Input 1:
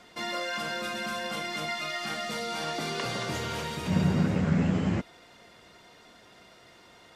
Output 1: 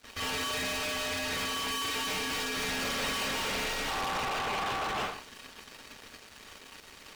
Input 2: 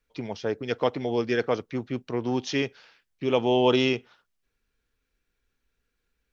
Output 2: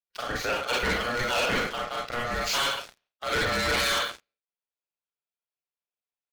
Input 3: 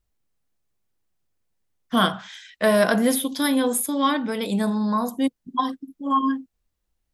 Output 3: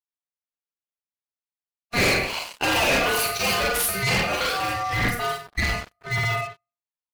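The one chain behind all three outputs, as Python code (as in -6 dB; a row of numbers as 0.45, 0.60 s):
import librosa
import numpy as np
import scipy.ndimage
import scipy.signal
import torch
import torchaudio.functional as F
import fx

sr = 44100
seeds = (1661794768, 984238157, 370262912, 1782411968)

y = scipy.ndimage.median_filter(x, 5, mode='constant')
y = scipy.signal.sosfilt(scipy.signal.butter(4, 63.0, 'highpass', fs=sr, output='sos'), y)
y = fx.peak_eq(y, sr, hz=190.0, db=-12.5, octaves=2.5)
y = fx.notch(y, sr, hz=620.0, q=12.0)
y = fx.rev_schroeder(y, sr, rt60_s=0.44, comb_ms=33, drr_db=-3.5)
y = fx.dynamic_eq(y, sr, hz=1700.0, q=1.3, threshold_db=-40.0, ratio=4.0, max_db=5)
y = fx.leveller(y, sr, passes=5)
y = y * np.sin(2.0 * np.pi * 960.0 * np.arange(len(y)) / sr)
y = fx.hpss(y, sr, part='harmonic', gain_db=-7)
y = y * librosa.db_to_amplitude(-7.0)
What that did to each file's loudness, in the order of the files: -1.5, 0.0, 0.0 LU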